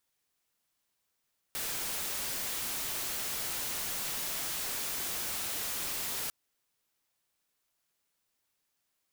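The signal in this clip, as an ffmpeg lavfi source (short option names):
-f lavfi -i "anoisesrc=c=white:a=0.0291:d=4.75:r=44100:seed=1"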